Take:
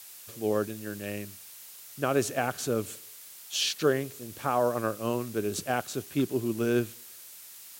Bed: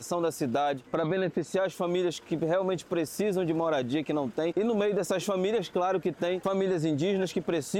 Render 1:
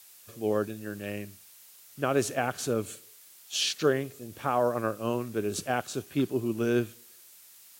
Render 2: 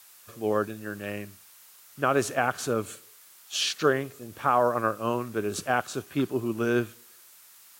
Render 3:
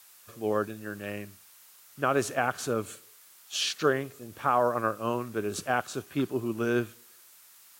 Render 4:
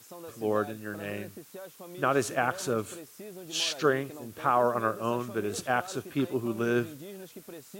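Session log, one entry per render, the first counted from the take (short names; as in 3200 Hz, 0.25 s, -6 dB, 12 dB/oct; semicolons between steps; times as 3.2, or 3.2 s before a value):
noise print and reduce 6 dB
bell 1200 Hz +7.5 dB 1.3 oct
gain -2 dB
add bed -16.5 dB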